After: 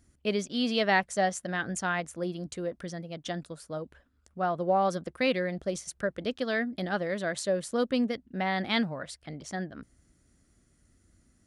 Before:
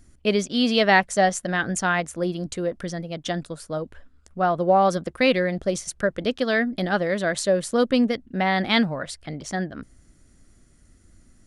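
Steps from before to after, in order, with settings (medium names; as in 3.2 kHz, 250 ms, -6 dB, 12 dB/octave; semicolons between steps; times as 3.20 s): high-pass 44 Hz; trim -7.5 dB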